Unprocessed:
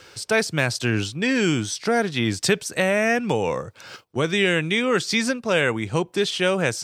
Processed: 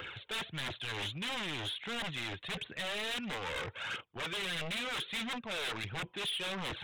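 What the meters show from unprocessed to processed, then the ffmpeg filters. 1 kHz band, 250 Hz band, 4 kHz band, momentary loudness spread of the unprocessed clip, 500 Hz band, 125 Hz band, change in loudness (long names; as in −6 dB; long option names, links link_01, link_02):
−13.0 dB, −20.5 dB, −8.0 dB, 5 LU, −22.0 dB, −18.0 dB, −15.0 dB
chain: -af "lowpass=2800,areverse,acompressor=threshold=-30dB:ratio=16,areverse,aphaser=in_gain=1:out_gain=1:delay=2.6:decay=0.51:speed=1.5:type=triangular,aresample=8000,aeval=exprs='0.0224*(abs(mod(val(0)/0.0224+3,4)-2)-1)':channel_layout=same,aresample=44100,crystalizer=i=9:c=0,asoftclip=type=tanh:threshold=-31dB,volume=-2dB"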